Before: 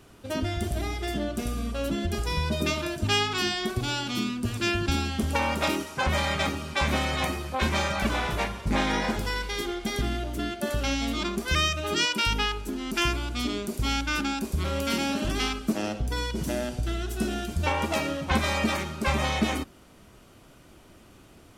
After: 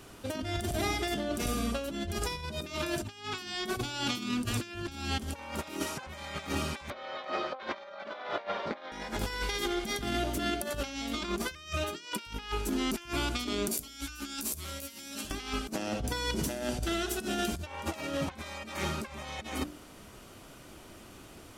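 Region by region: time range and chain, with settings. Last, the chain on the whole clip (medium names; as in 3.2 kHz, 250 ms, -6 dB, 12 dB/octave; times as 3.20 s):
6.90–8.92 s: cabinet simulation 370–4200 Hz, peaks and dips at 580 Hz +9 dB, 1.3 kHz +4 dB, 2.6 kHz -6 dB + doubling 36 ms -10.5 dB
13.71–15.31 s: pre-emphasis filter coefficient 0.8 + compressor with a negative ratio -44 dBFS, ratio -0.5 + doubling 14 ms -3 dB
whole clip: tone controls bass -3 dB, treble +2 dB; de-hum 59.48 Hz, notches 12; compressor with a negative ratio -33 dBFS, ratio -0.5; trim -1 dB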